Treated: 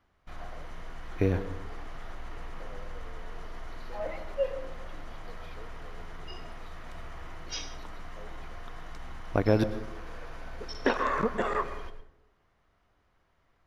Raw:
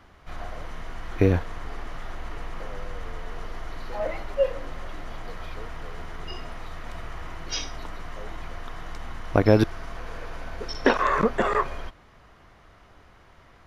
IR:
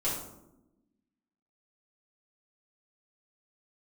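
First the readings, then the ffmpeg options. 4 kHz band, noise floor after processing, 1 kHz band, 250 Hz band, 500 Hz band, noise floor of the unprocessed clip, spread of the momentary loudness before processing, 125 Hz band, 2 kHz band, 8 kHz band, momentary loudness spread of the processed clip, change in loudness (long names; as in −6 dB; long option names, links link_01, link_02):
−6.5 dB, −70 dBFS, −6.0 dB, −6.0 dB, −6.0 dB, −54 dBFS, 18 LU, −6.0 dB, −6.0 dB, can't be measured, 18 LU, −5.5 dB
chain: -filter_complex "[0:a]agate=range=-11dB:threshold=-44dB:ratio=16:detection=peak,asplit=2[link_01][link_02];[1:a]atrim=start_sample=2205,asetrate=66150,aresample=44100,adelay=107[link_03];[link_02][link_03]afir=irnorm=-1:irlink=0,volume=-16.5dB[link_04];[link_01][link_04]amix=inputs=2:normalize=0,volume=-6.5dB"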